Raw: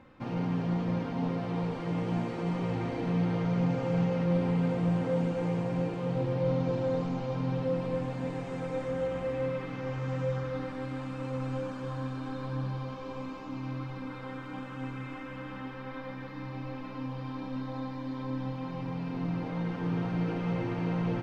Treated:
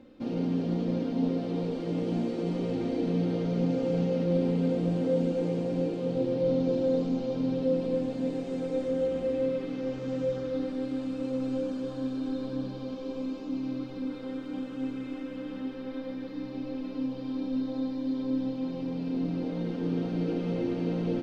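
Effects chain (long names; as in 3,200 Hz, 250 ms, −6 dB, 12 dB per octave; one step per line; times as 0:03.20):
octave-band graphic EQ 125/250/500/1,000/2,000/4,000 Hz −11/+9/+5/−10/−6/+5 dB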